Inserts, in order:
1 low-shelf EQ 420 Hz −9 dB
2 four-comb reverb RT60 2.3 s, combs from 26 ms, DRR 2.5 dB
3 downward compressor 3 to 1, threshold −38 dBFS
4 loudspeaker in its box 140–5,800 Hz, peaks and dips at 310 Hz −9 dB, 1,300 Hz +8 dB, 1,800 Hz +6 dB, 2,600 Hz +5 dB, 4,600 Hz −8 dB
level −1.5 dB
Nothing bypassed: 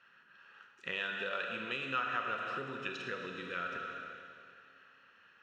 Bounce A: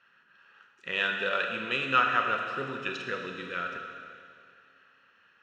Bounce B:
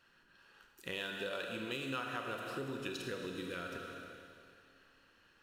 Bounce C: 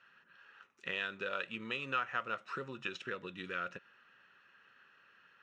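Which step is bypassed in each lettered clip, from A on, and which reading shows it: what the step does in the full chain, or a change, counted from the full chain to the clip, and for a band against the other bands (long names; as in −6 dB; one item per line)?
3, average gain reduction 4.5 dB
4, change in integrated loudness −3.5 LU
2, change in momentary loudness spread −10 LU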